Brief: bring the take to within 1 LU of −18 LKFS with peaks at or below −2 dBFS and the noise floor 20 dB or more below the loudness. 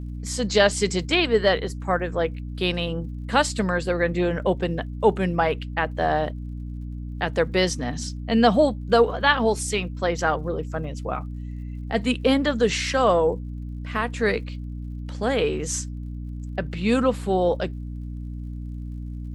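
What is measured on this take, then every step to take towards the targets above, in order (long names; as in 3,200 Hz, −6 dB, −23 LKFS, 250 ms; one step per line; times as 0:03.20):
crackle rate 55 per second; mains hum 60 Hz; hum harmonics up to 300 Hz; level of the hum −30 dBFS; integrated loudness −23.5 LKFS; sample peak −4.0 dBFS; target loudness −18.0 LKFS
→ click removal
mains-hum notches 60/120/180/240/300 Hz
level +5.5 dB
brickwall limiter −2 dBFS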